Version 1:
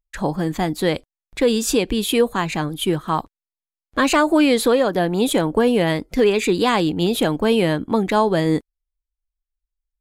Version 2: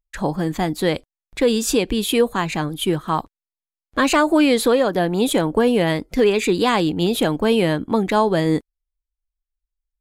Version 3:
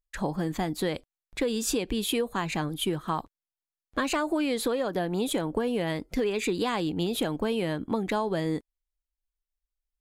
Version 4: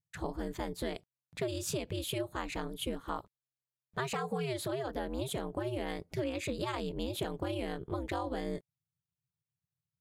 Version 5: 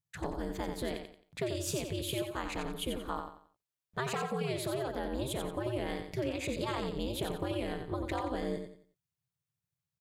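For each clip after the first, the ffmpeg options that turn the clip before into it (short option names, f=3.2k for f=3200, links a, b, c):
-af anull
-af "acompressor=threshold=-19dB:ratio=6,volume=-5dB"
-af "aeval=exprs='val(0)*sin(2*PI*130*n/s)':c=same,volume=-5dB"
-af "aecho=1:1:89|178|267|356:0.473|0.151|0.0485|0.0155"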